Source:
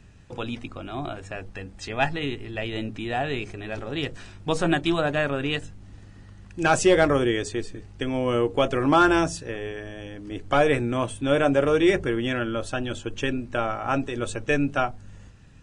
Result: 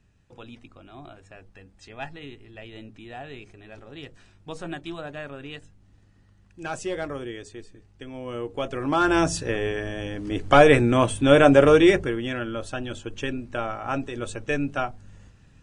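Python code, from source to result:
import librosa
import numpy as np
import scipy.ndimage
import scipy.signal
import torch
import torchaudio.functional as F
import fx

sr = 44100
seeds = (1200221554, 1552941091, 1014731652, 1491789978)

y = fx.gain(x, sr, db=fx.line((8.08, -12.0), (9.0, -4.0), (9.39, 6.0), (11.72, 6.0), (12.19, -3.0)))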